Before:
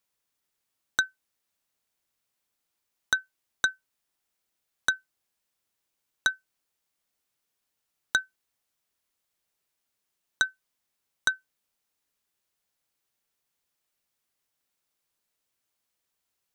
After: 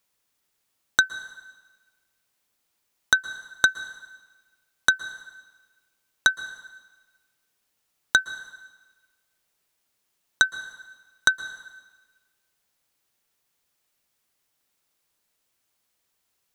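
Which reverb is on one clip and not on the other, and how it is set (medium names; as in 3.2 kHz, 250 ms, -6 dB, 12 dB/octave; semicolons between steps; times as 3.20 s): plate-style reverb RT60 1.3 s, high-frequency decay 0.95×, pre-delay 105 ms, DRR 15 dB; trim +6 dB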